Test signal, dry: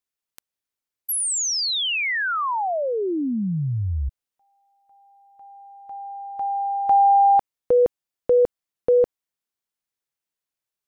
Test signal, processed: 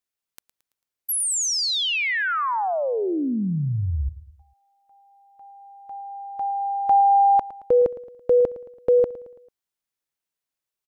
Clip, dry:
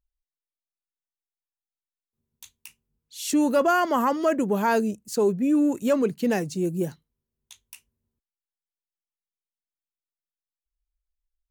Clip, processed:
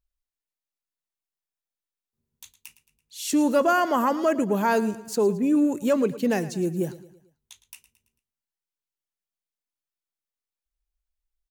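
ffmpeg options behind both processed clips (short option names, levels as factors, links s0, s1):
-af "aecho=1:1:111|222|333|444:0.15|0.0703|0.0331|0.0155"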